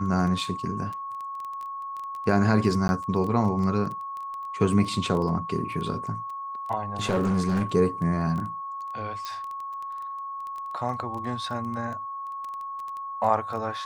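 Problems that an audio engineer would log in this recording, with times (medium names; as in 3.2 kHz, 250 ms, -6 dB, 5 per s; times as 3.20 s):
crackle 11 per s -31 dBFS
whine 1.1 kHz -32 dBFS
2.88–2.89 s: dropout 11 ms
7.02–7.63 s: clipped -19.5 dBFS
9.25 s: pop -20 dBFS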